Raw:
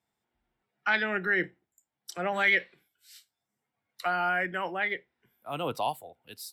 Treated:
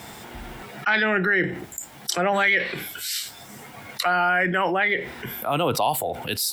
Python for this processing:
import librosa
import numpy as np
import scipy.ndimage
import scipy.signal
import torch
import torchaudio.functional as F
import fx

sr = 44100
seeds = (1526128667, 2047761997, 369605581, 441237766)

y = fx.env_flatten(x, sr, amount_pct=70)
y = y * 10.0 ** (3.0 / 20.0)